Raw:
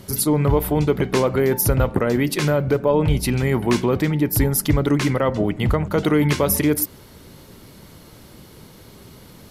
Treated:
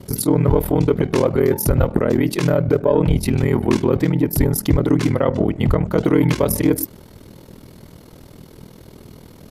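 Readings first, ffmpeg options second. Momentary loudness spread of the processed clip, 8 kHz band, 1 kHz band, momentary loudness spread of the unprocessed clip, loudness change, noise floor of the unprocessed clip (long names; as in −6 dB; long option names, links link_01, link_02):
2 LU, −3.0 dB, −1.0 dB, 2 LU, +1.5 dB, −45 dBFS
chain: -filter_complex "[0:a]acrossover=split=810[link_01][link_02];[link_01]acontrast=55[link_03];[link_03][link_02]amix=inputs=2:normalize=0,aeval=exprs='val(0)*sin(2*PI*20*n/s)':channel_layout=same"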